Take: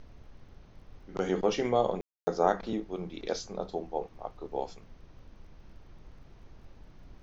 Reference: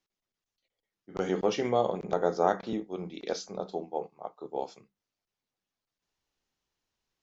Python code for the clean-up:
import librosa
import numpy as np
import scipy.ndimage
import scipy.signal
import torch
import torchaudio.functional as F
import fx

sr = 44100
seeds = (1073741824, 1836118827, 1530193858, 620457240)

y = fx.fix_declick_ar(x, sr, threshold=6.5)
y = fx.fix_ambience(y, sr, seeds[0], print_start_s=0.38, print_end_s=0.88, start_s=2.01, end_s=2.27)
y = fx.noise_reduce(y, sr, print_start_s=0.38, print_end_s=0.88, reduce_db=30.0)